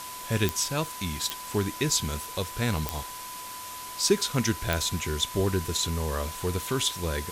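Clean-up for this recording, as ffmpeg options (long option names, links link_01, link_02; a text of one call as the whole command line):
ffmpeg -i in.wav -af "adeclick=threshold=4,bandreject=frequency=1000:width=30,afftdn=noise_reduction=30:noise_floor=-39" out.wav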